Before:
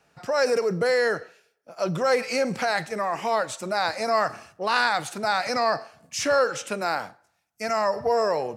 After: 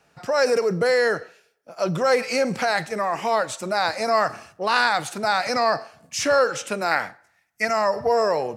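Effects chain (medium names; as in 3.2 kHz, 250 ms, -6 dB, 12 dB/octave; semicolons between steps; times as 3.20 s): 6.91–7.65 s: peaking EQ 1.9 kHz +14 dB 0.5 oct; trim +2.5 dB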